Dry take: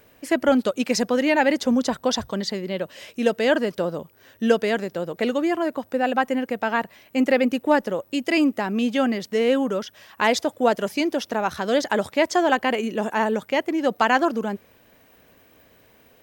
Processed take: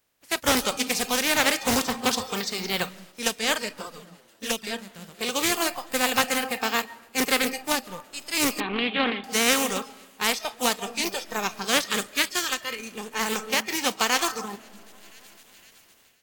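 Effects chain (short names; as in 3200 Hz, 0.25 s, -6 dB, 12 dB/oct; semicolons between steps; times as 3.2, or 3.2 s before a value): spectral contrast lowered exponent 0.33; 11.83–12.82 bell 760 Hz -7.5 dB 0.71 oct; on a send: split-band echo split 1800 Hz, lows 0.272 s, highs 0.51 s, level -16 dB; on the sum: digital reverb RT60 1.3 s, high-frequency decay 0.4×, pre-delay 0.1 s, DRR 9 dB; AGC gain up to 12.5 dB; spectral noise reduction 14 dB; 3.69–4.67 envelope flanger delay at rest 10.3 ms, full sweep at -15.5 dBFS; 8.6–9.24 steep low-pass 3900 Hz 96 dB/oct; Doppler distortion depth 0.34 ms; gain -4.5 dB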